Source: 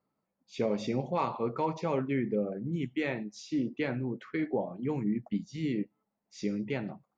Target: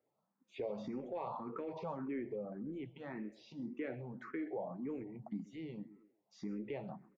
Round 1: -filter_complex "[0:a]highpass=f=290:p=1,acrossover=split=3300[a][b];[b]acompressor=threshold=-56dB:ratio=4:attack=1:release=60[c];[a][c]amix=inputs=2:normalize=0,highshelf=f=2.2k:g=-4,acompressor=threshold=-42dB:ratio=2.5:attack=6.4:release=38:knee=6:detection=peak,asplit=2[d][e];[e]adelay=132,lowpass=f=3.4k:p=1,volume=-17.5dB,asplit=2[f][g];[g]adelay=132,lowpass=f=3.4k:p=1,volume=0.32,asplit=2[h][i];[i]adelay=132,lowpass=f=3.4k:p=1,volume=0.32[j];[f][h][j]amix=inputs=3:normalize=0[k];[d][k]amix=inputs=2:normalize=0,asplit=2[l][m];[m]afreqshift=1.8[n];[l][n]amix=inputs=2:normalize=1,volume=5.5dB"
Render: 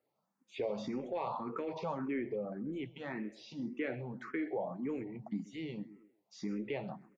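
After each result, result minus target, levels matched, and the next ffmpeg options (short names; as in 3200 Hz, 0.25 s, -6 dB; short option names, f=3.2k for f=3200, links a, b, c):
4000 Hz band +4.5 dB; compressor: peak gain reduction -3.5 dB
-filter_complex "[0:a]highpass=f=290:p=1,acrossover=split=3300[a][b];[b]acompressor=threshold=-56dB:ratio=4:attack=1:release=60[c];[a][c]amix=inputs=2:normalize=0,highshelf=f=2.2k:g=-14,acompressor=threshold=-42dB:ratio=2.5:attack=6.4:release=38:knee=6:detection=peak,asplit=2[d][e];[e]adelay=132,lowpass=f=3.4k:p=1,volume=-17.5dB,asplit=2[f][g];[g]adelay=132,lowpass=f=3.4k:p=1,volume=0.32,asplit=2[h][i];[i]adelay=132,lowpass=f=3.4k:p=1,volume=0.32[j];[f][h][j]amix=inputs=3:normalize=0[k];[d][k]amix=inputs=2:normalize=0,asplit=2[l][m];[m]afreqshift=1.8[n];[l][n]amix=inputs=2:normalize=1,volume=5.5dB"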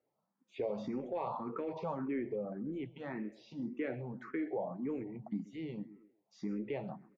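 compressor: peak gain reduction -4 dB
-filter_complex "[0:a]highpass=f=290:p=1,acrossover=split=3300[a][b];[b]acompressor=threshold=-56dB:ratio=4:attack=1:release=60[c];[a][c]amix=inputs=2:normalize=0,highshelf=f=2.2k:g=-14,acompressor=threshold=-48.5dB:ratio=2.5:attack=6.4:release=38:knee=6:detection=peak,asplit=2[d][e];[e]adelay=132,lowpass=f=3.4k:p=1,volume=-17.5dB,asplit=2[f][g];[g]adelay=132,lowpass=f=3.4k:p=1,volume=0.32,asplit=2[h][i];[i]adelay=132,lowpass=f=3.4k:p=1,volume=0.32[j];[f][h][j]amix=inputs=3:normalize=0[k];[d][k]amix=inputs=2:normalize=0,asplit=2[l][m];[m]afreqshift=1.8[n];[l][n]amix=inputs=2:normalize=1,volume=5.5dB"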